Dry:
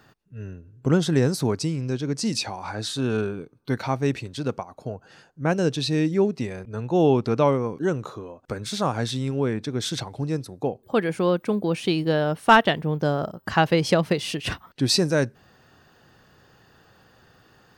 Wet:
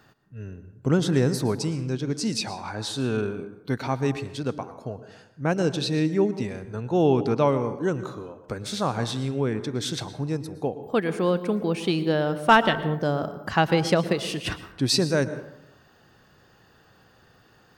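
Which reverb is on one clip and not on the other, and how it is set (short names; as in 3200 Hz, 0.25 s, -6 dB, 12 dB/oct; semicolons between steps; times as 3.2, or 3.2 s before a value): plate-style reverb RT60 0.85 s, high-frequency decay 0.45×, pre-delay 0.1 s, DRR 12.5 dB; gain -1.5 dB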